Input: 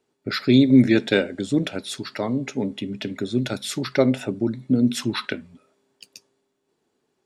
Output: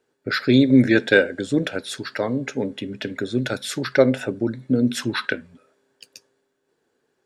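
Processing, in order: thirty-one-band EQ 200 Hz -4 dB, 500 Hz +7 dB, 1600 Hz +10 dB

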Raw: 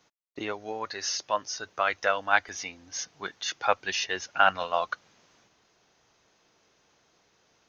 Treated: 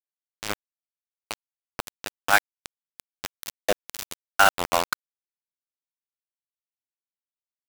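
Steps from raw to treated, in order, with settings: 0.71–2.18 compressor 12:1, threshold -32 dBFS, peak gain reduction 14 dB; 3.43–4.22 spectral repair 710–2900 Hz; bit-crush 4-bit; gain +3.5 dB

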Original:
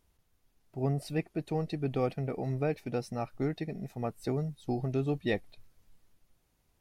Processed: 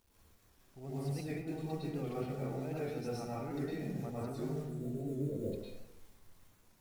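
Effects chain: companded quantiser 6-bit; reverse; compressor, threshold -39 dBFS, peak gain reduction 13.5 dB; reverse; spectral repair 4.59–5.38, 690–6400 Hz before; plate-style reverb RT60 1 s, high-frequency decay 0.6×, pre-delay 95 ms, DRR -8 dB; record warp 78 rpm, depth 100 cents; gain -4.5 dB

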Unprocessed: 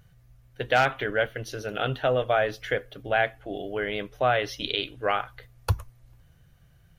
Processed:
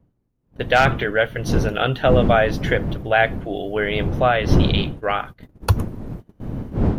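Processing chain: wind noise 210 Hz -28 dBFS; AGC gain up to 10.5 dB; gate -31 dBFS, range -22 dB; gain -1 dB

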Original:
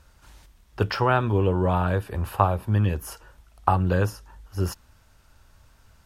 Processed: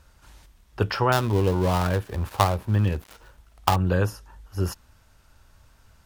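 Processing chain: 1.12–3.76 switching dead time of 0.17 ms

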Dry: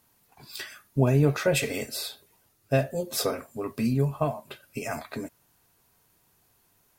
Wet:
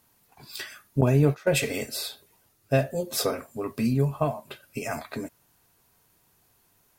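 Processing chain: 1.01–1.53 gate -23 dBFS, range -18 dB; gain +1 dB

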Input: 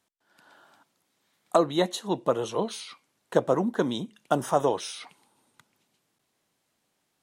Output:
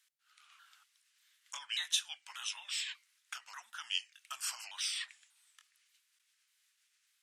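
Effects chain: repeated pitch sweeps -4.5 st, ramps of 0.589 s; limiter -19.5 dBFS, peak gain reduction 9.5 dB; inverse Chebyshev high-pass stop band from 470 Hz, stop band 60 dB; gain +3.5 dB

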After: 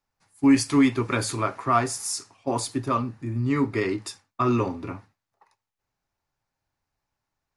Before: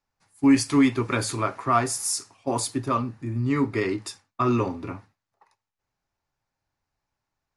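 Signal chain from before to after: 1.86–2.71 high shelf 11000 Hz -9.5 dB

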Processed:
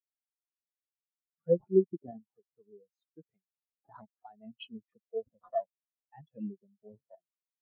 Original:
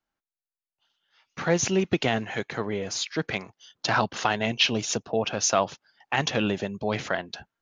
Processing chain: decimation with a swept rate 10×, swing 160% 0.59 Hz; spectral expander 4:1; gain -4 dB

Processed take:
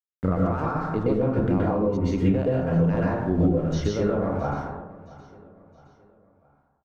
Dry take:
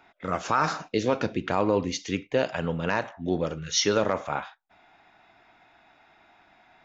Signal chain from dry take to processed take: Wiener smoothing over 9 samples; 1.32–3.75 high shelf 4900 Hz +6.5 dB; sample gate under -45 dBFS; plate-style reverb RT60 0.67 s, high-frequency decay 0.45×, pre-delay 0.115 s, DRR -8 dB; compressor 10:1, threshold -29 dBFS, peak gain reduction 21 dB; tilt -4.5 dB/oct; feedback echo 0.668 s, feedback 44%, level -19.5 dB; gain +2.5 dB

